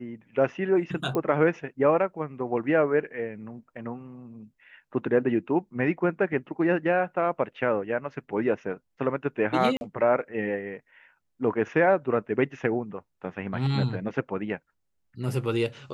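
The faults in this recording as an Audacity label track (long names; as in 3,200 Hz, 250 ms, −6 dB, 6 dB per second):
1.150000	1.150000	click −17 dBFS
9.770000	9.810000	drop-out 41 ms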